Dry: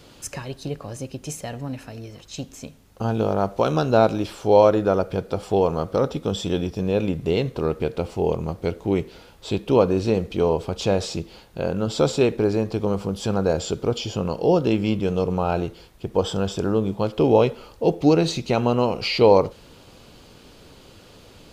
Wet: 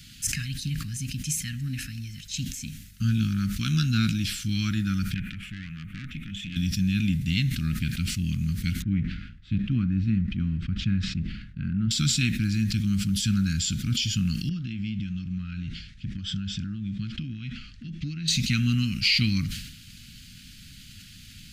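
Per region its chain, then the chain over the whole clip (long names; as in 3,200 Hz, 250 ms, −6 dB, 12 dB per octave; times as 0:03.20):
0:05.14–0:06.56: high shelf with overshoot 3,500 Hz −12 dB, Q 3 + downward compressor 1.5 to 1, threshold −33 dBFS + tube saturation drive 26 dB, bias 0.65
0:08.82–0:11.91: mu-law and A-law mismatch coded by A + low-pass filter 1,300 Hz
0:14.49–0:18.28: Gaussian smoothing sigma 1.7 samples + downward compressor 8 to 1, threshold −26 dBFS
whole clip: inverse Chebyshev band-stop filter 400–960 Hz, stop band 50 dB; high-shelf EQ 6,300 Hz +4.5 dB; level that may fall only so fast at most 62 dB per second; level +2.5 dB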